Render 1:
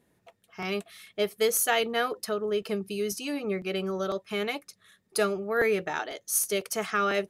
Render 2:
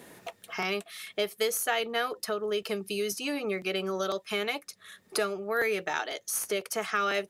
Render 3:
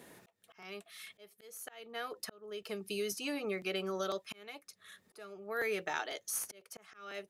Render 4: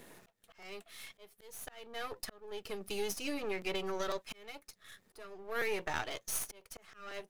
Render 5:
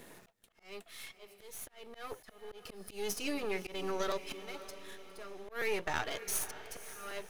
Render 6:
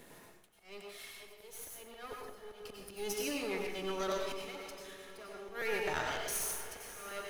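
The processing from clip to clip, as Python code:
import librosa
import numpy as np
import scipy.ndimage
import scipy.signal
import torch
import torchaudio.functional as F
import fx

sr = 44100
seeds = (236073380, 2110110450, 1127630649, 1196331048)

y1 = fx.low_shelf(x, sr, hz=270.0, db=-10.0)
y1 = fx.band_squash(y1, sr, depth_pct=70)
y2 = fx.auto_swell(y1, sr, attack_ms=613.0)
y2 = y2 * librosa.db_to_amplitude(-5.5)
y3 = np.where(y2 < 0.0, 10.0 ** (-12.0 / 20.0) * y2, y2)
y3 = y3 * librosa.db_to_amplitude(3.5)
y4 = fx.echo_diffused(y3, sr, ms=568, feedback_pct=49, wet_db=-14)
y4 = fx.auto_swell(y4, sr, attack_ms=177.0)
y4 = y4 * librosa.db_to_amplitude(1.5)
y5 = fx.rev_plate(y4, sr, seeds[0], rt60_s=0.68, hf_ratio=0.85, predelay_ms=80, drr_db=0.0)
y5 = y5 * librosa.db_to_amplitude(-2.5)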